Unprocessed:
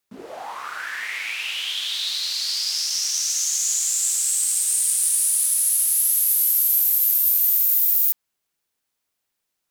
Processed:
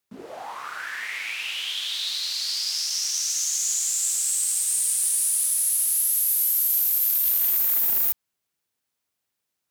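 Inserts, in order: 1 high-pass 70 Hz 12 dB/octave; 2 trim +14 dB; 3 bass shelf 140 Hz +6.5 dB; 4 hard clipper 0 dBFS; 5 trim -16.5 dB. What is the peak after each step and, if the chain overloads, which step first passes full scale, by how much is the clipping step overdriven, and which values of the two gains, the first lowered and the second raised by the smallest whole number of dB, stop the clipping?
-5.5 dBFS, +8.5 dBFS, +8.5 dBFS, 0.0 dBFS, -16.5 dBFS; step 2, 8.5 dB; step 2 +5 dB, step 5 -7.5 dB

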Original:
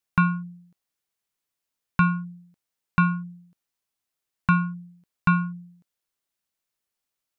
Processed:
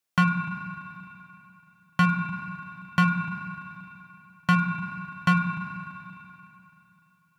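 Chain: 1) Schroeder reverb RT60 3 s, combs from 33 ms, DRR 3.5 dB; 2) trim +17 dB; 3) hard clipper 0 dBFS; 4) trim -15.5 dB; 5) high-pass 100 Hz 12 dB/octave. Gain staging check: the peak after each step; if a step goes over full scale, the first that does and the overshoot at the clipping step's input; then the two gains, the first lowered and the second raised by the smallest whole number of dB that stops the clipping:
-11.0 dBFS, +6.0 dBFS, 0.0 dBFS, -15.5 dBFS, -10.0 dBFS; step 2, 6.0 dB; step 2 +11 dB, step 4 -9.5 dB

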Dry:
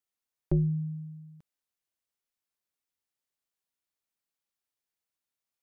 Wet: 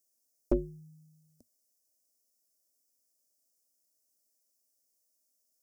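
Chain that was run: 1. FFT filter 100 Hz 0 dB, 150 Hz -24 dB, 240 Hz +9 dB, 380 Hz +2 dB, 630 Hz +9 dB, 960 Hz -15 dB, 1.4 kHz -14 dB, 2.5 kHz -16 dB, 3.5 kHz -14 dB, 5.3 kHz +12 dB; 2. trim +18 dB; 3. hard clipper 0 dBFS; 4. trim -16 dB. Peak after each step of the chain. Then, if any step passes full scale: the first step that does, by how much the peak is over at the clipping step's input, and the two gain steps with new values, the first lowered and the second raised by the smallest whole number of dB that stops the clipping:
-14.5 dBFS, +3.5 dBFS, 0.0 dBFS, -16.0 dBFS; step 2, 3.5 dB; step 2 +14 dB, step 4 -12 dB

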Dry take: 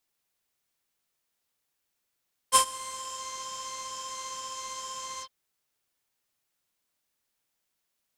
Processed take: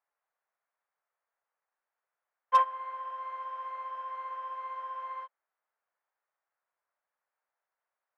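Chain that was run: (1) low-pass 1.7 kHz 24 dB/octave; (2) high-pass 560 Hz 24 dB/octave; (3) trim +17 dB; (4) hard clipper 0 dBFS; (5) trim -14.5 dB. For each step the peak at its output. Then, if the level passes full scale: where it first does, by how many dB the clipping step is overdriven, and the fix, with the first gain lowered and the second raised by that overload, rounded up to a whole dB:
-13.5 dBFS, -13.5 dBFS, +3.5 dBFS, 0.0 dBFS, -14.5 dBFS; step 3, 3.5 dB; step 3 +13 dB, step 5 -10.5 dB

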